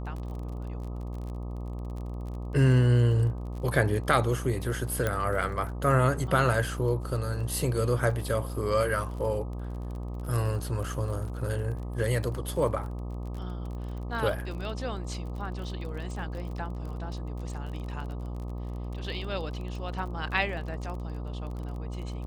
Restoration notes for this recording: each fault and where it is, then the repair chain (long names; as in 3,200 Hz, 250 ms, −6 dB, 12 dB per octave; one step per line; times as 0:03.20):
mains buzz 60 Hz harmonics 21 −35 dBFS
surface crackle 31 per second −37 dBFS
0:05.07: click −14 dBFS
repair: click removal
hum removal 60 Hz, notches 21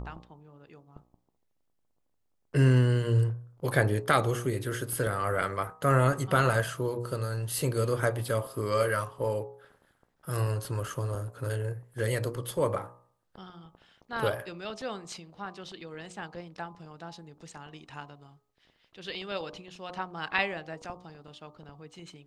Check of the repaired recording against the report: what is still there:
0:05.07: click